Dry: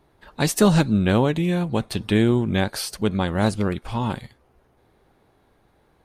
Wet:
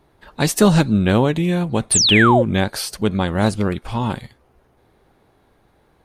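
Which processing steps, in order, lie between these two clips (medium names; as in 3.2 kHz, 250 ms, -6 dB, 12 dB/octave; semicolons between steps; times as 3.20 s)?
painted sound fall, 1.91–2.43 s, 470–10000 Hz -18 dBFS; trim +3 dB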